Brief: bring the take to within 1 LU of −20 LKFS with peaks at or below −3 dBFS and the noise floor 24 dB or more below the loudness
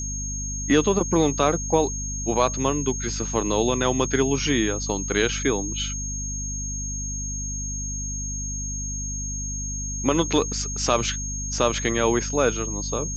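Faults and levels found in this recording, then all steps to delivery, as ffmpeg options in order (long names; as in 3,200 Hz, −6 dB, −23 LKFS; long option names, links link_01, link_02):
mains hum 50 Hz; hum harmonics up to 250 Hz; level of the hum −29 dBFS; interfering tone 6,500 Hz; level of the tone −30 dBFS; integrated loudness −24.0 LKFS; sample peak −5.5 dBFS; target loudness −20.0 LKFS
→ -af "bandreject=frequency=50:width_type=h:width=6,bandreject=frequency=100:width_type=h:width=6,bandreject=frequency=150:width_type=h:width=6,bandreject=frequency=200:width_type=h:width=6,bandreject=frequency=250:width_type=h:width=6"
-af "bandreject=frequency=6500:width=30"
-af "volume=4dB,alimiter=limit=-3dB:level=0:latency=1"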